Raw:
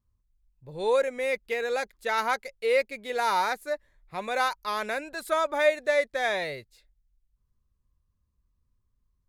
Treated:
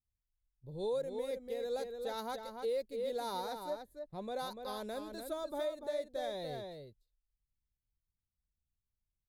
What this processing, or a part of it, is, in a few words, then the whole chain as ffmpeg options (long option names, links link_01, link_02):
over-bright horn tweeter: -filter_complex "[0:a]asettb=1/sr,asplit=3[link_01][link_02][link_03];[link_01]atrim=end=3.704[link_04];[link_02]atrim=start=3.7:end=4.39,asetpts=PTS-STARTPTS,afade=type=in:duration=0.004:curve=qsin,afade=type=out:start_time=0.686:duration=0.004:curve=qsin,aemphasis=mode=reproduction:type=cd[link_05];[link_03]atrim=start=4.386[link_06];[link_04][link_05]acrossfade=duration=0.004:curve1=hsin:curve2=qsin[link_07];[link_07][link_06]acrossfade=duration=0.004:curve1=qsin:curve2=hsin,agate=range=-14dB:threshold=-54dB:ratio=16:detection=peak,firequalizer=gain_entry='entry(160,0);entry(1200,-15);entry(5000,-23);entry(12000,-12)':delay=0.05:min_phase=1,highshelf=frequency=3000:width_type=q:width=3:gain=8.5,asplit=2[link_08][link_09];[link_09]adelay=291.5,volume=-6dB,highshelf=frequency=4000:gain=-6.56[link_10];[link_08][link_10]amix=inputs=2:normalize=0,alimiter=level_in=2dB:limit=-24dB:level=0:latency=1:release=257,volume=-2dB,volume=-2.5dB"